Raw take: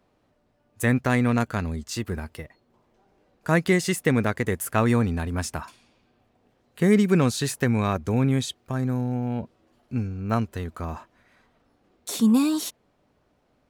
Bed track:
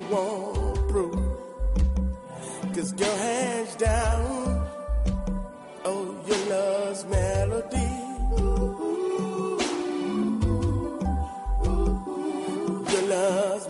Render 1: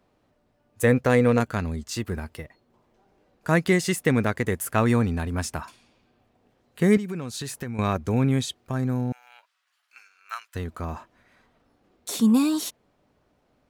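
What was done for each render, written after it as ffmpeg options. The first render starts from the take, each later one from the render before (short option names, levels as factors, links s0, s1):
-filter_complex "[0:a]asettb=1/sr,asplit=3[s0][s1][s2];[s0]atrim=end=0.824[s3];[s1]atrim=start=0.82:end=1.4,asetpts=PTS-STARTPTS,afade=t=in:d=0.004:c=qsin,afade=t=out:st=0.576:d=0.004:c=qsin,equalizer=f=490:w=5.6:g=12[s4];[s2]atrim=start=1.396[s5];[s3][s4]acrossfade=d=0.004:c1=hsin:c2=qsin[s6];[s6][s5]acrossfade=d=0.004:c1=qsin:c2=hsin,asettb=1/sr,asplit=3[s7][s8][s9];[s7]atrim=end=6.974[s10];[s8]atrim=start=6.97:end=7.79,asetpts=PTS-STARTPTS,afade=t=in:d=0.004:c=qsin,afade=t=out:st=0.816:d=0.004:c=qsin,acompressor=threshold=0.0316:ratio=4:attack=3.2:release=140:knee=1:detection=peak[s11];[s9]atrim=start=7.786[s12];[s10][s11]acrossfade=d=0.004:c1=hsin:c2=qsin[s13];[s13][s12]acrossfade=d=0.004:c1=qsin:c2=hsin,asettb=1/sr,asplit=3[s14][s15][s16];[s14]atrim=end=9.124[s17];[s15]atrim=start=9.12:end=10.55,asetpts=PTS-STARTPTS,afade=t=in:d=0.004:c=qsin,afade=t=out:st=1.426:d=0.004:c=qsin,highpass=f=1300:w=0.5412,highpass=f=1300:w=1.3066[s18];[s16]atrim=start=10.546[s19];[s17][s18]acrossfade=d=0.004:c1=hsin:c2=qsin[s20];[s20][s19]acrossfade=d=0.004:c1=qsin:c2=hsin"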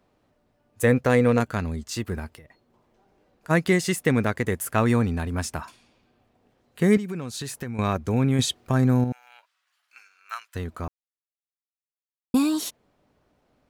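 -filter_complex "[0:a]asplit=3[s0][s1][s2];[s0]afade=t=out:st=2.3:d=0.02[s3];[s1]acompressor=threshold=0.00708:ratio=12:attack=3.2:release=140:knee=1:detection=peak,afade=t=in:st=2.3:d=0.02,afade=t=out:st=3.49:d=0.02[s4];[s2]afade=t=in:st=3.49:d=0.02[s5];[s3][s4][s5]amix=inputs=3:normalize=0,asplit=5[s6][s7][s8][s9][s10];[s6]atrim=end=8.392[s11];[s7]atrim=start=8.388:end=9.042,asetpts=PTS-STARTPTS,volume=2[s12];[s8]atrim=start=9.038:end=10.88,asetpts=PTS-STARTPTS,afade=t=out:st=1.838:d=0.004:c=hsin[s13];[s9]atrim=start=10.88:end=12.34,asetpts=PTS-STARTPTS,volume=0[s14];[s10]atrim=start=12.34,asetpts=PTS-STARTPTS,afade=t=in:d=0.004:c=hsin[s15];[s11][s12]acrossfade=d=0.004:c1=hsin:c2=hsin[s16];[s13][s14][s15]concat=n=3:v=0:a=1[s17];[s16][s17]acrossfade=d=0.004:c1=hsin:c2=hsin"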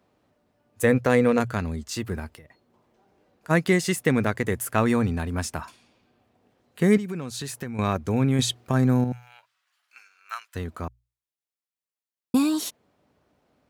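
-af "highpass=56,bandreject=f=60:t=h:w=6,bandreject=f=120:t=h:w=6"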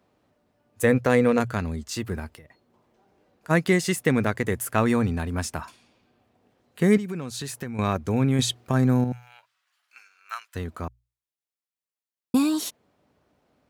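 -af anull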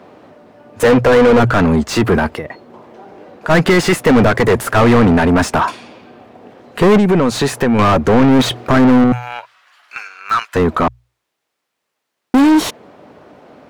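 -filter_complex "[0:a]asplit=2[s0][s1];[s1]adynamicsmooth=sensitivity=6.5:basefreq=750,volume=0.794[s2];[s0][s2]amix=inputs=2:normalize=0,asplit=2[s3][s4];[s4]highpass=f=720:p=1,volume=63.1,asoftclip=type=tanh:threshold=0.794[s5];[s3][s5]amix=inputs=2:normalize=0,lowpass=f=1300:p=1,volume=0.501"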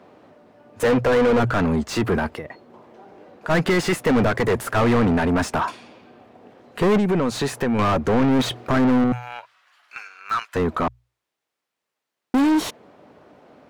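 -af "volume=0.398"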